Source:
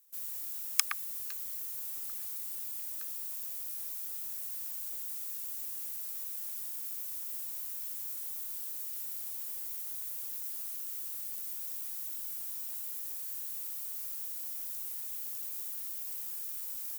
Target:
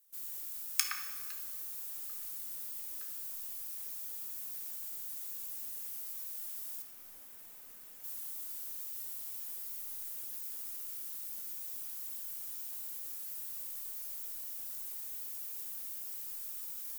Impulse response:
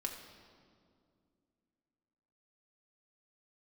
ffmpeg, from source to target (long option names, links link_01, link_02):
-filter_complex "[0:a]asettb=1/sr,asplit=3[link_01][link_02][link_03];[link_01]atrim=end=6.824[link_04];[link_02]atrim=start=6.82:end=8.04,asetpts=PTS-STARTPTS,afade=type=in:duration=0.004:curve=qsin,afade=type=out:start_time=1.216:duration=0.004:curve=qsin,acrossover=split=2700[link_05][link_06];[link_06]acompressor=threshold=-46dB:ratio=4:attack=1:release=60[link_07];[link_05][link_07]amix=inputs=2:normalize=0[link_08];[link_03]atrim=start=8.036[link_09];[link_04][link_08]acrossfade=duration=0.004:curve1=hsin:curve2=qsin[link_10];[link_10][link_09]acrossfade=duration=0.004:curve1=qsin:curve2=hsin[link_11];[1:a]atrim=start_sample=2205,asetrate=52920,aresample=44100[link_12];[link_11][link_12]afir=irnorm=-1:irlink=0"